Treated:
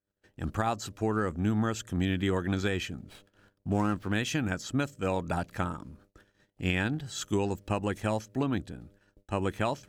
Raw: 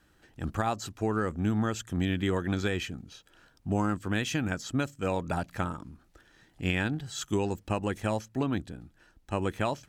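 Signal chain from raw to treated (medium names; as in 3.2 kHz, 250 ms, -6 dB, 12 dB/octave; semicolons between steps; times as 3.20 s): mains buzz 100 Hz, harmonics 6, -63 dBFS -2 dB/octave; gate -56 dBFS, range -32 dB; 3.00–4.12 s: sliding maximum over 5 samples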